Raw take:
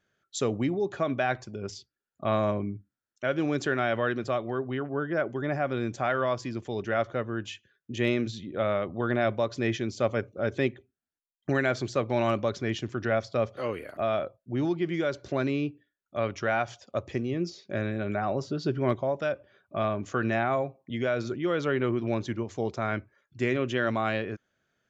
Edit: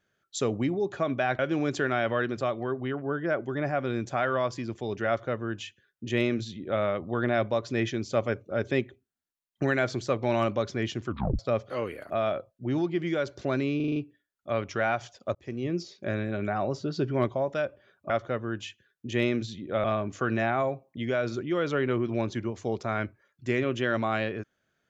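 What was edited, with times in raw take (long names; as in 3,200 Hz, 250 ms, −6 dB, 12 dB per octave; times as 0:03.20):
0:01.39–0:03.26: remove
0:06.95–0:08.69: duplicate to 0:19.77
0:12.95: tape stop 0.31 s
0:15.63: stutter 0.04 s, 6 plays
0:17.02–0:17.33: fade in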